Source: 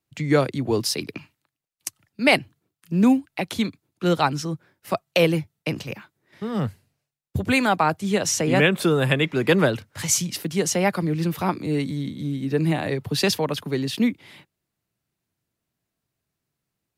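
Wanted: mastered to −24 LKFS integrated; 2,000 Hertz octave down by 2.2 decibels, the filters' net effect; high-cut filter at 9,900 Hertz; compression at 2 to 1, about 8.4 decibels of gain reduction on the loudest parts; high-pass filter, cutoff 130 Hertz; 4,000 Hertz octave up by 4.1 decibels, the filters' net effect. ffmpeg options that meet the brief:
ffmpeg -i in.wav -af "highpass=130,lowpass=9900,equalizer=frequency=2000:width_type=o:gain=-5,equalizer=frequency=4000:width_type=o:gain=7,acompressor=threshold=-29dB:ratio=2,volume=5.5dB" out.wav

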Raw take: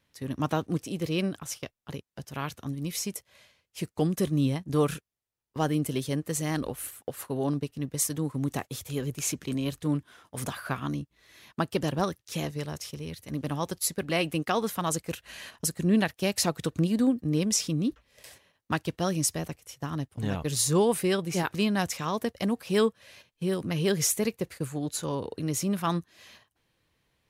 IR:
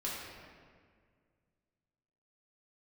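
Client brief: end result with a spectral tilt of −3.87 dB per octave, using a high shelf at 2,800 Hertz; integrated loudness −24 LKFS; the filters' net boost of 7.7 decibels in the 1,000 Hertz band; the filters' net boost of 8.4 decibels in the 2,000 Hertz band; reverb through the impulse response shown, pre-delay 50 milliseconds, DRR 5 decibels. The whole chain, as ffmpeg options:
-filter_complex "[0:a]equalizer=frequency=1000:width_type=o:gain=7.5,equalizer=frequency=2000:width_type=o:gain=7,highshelf=frequency=2800:gain=3.5,asplit=2[link_01][link_02];[1:a]atrim=start_sample=2205,adelay=50[link_03];[link_02][link_03]afir=irnorm=-1:irlink=0,volume=-8dB[link_04];[link_01][link_04]amix=inputs=2:normalize=0,volume=1.5dB"

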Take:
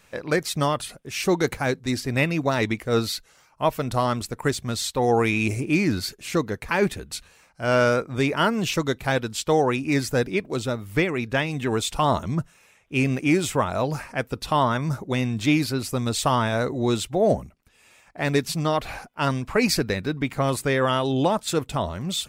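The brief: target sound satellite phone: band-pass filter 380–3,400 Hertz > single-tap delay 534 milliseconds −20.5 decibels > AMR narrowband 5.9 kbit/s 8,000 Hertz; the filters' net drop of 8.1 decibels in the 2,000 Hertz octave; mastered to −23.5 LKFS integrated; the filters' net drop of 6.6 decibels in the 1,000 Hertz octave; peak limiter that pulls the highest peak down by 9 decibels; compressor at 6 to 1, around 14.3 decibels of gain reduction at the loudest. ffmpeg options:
ffmpeg -i in.wav -af "equalizer=frequency=1000:width_type=o:gain=-6.5,equalizer=frequency=2000:width_type=o:gain=-8,acompressor=threshold=-33dB:ratio=6,alimiter=level_in=5.5dB:limit=-24dB:level=0:latency=1,volume=-5.5dB,highpass=380,lowpass=3400,aecho=1:1:534:0.0944,volume=22.5dB" -ar 8000 -c:a libopencore_amrnb -b:a 5900 out.amr

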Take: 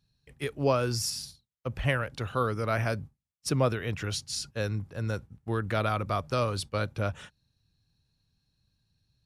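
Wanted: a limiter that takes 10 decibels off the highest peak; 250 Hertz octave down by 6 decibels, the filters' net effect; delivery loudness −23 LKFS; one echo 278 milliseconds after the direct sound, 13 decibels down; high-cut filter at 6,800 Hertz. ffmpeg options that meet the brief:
ffmpeg -i in.wav -af "lowpass=6800,equalizer=frequency=250:width_type=o:gain=-8.5,alimiter=limit=-23.5dB:level=0:latency=1,aecho=1:1:278:0.224,volume=11.5dB" out.wav

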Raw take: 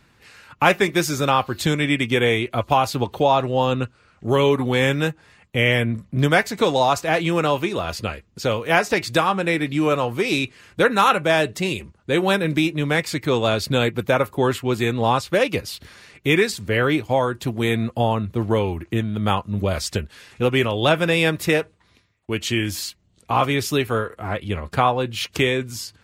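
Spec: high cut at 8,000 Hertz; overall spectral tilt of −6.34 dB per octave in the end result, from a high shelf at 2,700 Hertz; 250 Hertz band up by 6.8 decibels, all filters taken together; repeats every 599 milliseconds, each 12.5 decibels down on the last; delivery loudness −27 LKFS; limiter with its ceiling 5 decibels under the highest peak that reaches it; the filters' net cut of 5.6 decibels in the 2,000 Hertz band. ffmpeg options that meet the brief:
ffmpeg -i in.wav -af "lowpass=8000,equalizer=frequency=250:width_type=o:gain=9,equalizer=frequency=2000:width_type=o:gain=-4,highshelf=frequency=2700:gain=-7.5,alimiter=limit=-8dB:level=0:latency=1,aecho=1:1:599|1198|1797:0.237|0.0569|0.0137,volume=-7.5dB" out.wav

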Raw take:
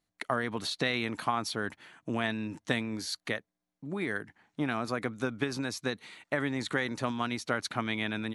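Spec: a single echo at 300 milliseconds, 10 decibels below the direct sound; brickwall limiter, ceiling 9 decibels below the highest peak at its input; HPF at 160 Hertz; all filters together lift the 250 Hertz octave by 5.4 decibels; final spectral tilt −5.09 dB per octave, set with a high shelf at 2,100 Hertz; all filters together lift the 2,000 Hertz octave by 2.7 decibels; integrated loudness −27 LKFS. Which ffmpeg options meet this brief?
ffmpeg -i in.wav -af "highpass=160,equalizer=frequency=250:width_type=o:gain=7,equalizer=frequency=2000:width_type=o:gain=6,highshelf=frequency=2100:gain=-5.5,alimiter=limit=-19.5dB:level=0:latency=1,aecho=1:1:300:0.316,volume=5dB" out.wav

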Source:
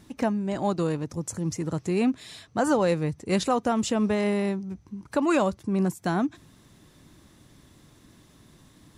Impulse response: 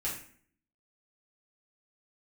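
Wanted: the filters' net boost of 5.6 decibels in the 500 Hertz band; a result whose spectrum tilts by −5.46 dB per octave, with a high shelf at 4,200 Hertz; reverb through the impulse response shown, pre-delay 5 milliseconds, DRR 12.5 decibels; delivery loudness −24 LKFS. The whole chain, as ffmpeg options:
-filter_complex "[0:a]equalizer=frequency=500:width_type=o:gain=7,highshelf=frequency=4200:gain=-7.5,asplit=2[link_01][link_02];[1:a]atrim=start_sample=2205,adelay=5[link_03];[link_02][link_03]afir=irnorm=-1:irlink=0,volume=-16dB[link_04];[link_01][link_04]amix=inputs=2:normalize=0,volume=-1dB"

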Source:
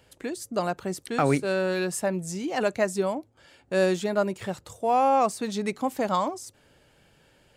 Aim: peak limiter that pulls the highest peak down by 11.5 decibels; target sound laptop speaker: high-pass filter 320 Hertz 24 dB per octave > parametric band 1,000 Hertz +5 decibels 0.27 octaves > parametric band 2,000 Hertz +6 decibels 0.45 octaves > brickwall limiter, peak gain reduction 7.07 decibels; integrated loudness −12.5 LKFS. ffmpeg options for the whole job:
ffmpeg -i in.wav -af "alimiter=limit=-22dB:level=0:latency=1,highpass=frequency=320:width=0.5412,highpass=frequency=320:width=1.3066,equalizer=frequency=1000:width_type=o:width=0.27:gain=5,equalizer=frequency=2000:width_type=o:width=0.45:gain=6,volume=23dB,alimiter=limit=-2.5dB:level=0:latency=1" out.wav

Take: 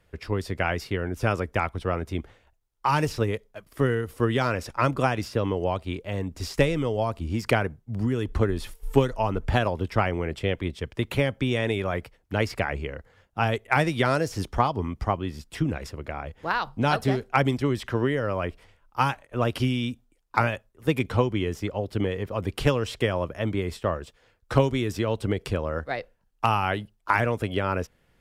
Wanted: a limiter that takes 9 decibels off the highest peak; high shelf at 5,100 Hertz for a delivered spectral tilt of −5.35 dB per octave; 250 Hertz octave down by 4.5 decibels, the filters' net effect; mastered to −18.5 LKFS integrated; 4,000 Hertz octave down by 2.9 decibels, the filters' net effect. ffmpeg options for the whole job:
ffmpeg -i in.wav -af "equalizer=frequency=250:width_type=o:gain=-6,equalizer=frequency=4000:width_type=o:gain=-6,highshelf=frequency=5100:gain=4.5,volume=12dB,alimiter=limit=-4dB:level=0:latency=1" out.wav

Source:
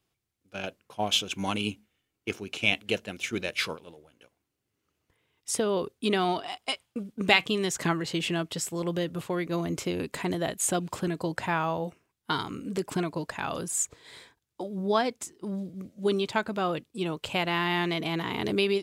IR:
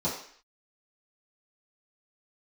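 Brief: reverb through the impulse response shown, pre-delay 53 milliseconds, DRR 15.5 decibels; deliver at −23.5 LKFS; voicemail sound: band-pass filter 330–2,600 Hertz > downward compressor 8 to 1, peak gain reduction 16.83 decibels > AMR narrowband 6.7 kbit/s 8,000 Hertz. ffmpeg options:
-filter_complex "[0:a]asplit=2[link_01][link_02];[1:a]atrim=start_sample=2205,adelay=53[link_03];[link_02][link_03]afir=irnorm=-1:irlink=0,volume=-24dB[link_04];[link_01][link_04]amix=inputs=2:normalize=0,highpass=330,lowpass=2600,acompressor=threshold=-34dB:ratio=8,volume=17.5dB" -ar 8000 -c:a libopencore_amrnb -b:a 6700

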